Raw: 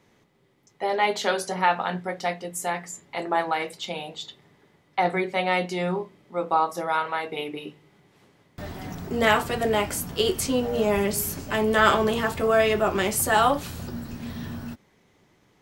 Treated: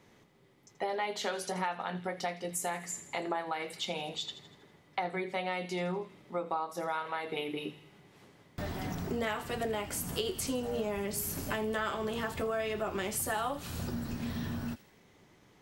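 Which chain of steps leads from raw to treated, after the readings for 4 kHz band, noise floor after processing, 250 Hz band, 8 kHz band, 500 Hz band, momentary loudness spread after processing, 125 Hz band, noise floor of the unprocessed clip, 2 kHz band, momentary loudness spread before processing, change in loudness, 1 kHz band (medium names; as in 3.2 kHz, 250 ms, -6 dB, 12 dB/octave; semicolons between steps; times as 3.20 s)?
-8.5 dB, -62 dBFS, -8.5 dB, -7.0 dB, -10.5 dB, 6 LU, -6.5 dB, -63 dBFS, -11.5 dB, 15 LU, -10.5 dB, -11.5 dB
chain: feedback echo behind a high-pass 81 ms, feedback 52%, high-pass 2.5 kHz, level -13 dB; compression 5:1, threshold -32 dBFS, peak gain reduction 17 dB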